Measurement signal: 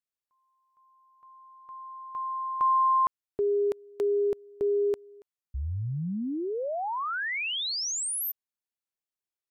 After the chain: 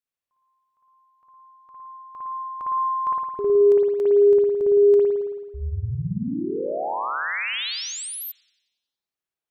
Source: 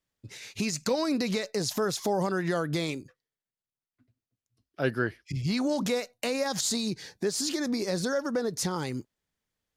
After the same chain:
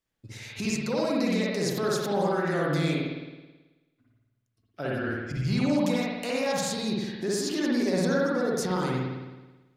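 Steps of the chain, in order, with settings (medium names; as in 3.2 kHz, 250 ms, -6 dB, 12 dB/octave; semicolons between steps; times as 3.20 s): peak limiter -21.5 dBFS; spring tank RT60 1.2 s, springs 54 ms, chirp 40 ms, DRR -4.5 dB; trim -1.5 dB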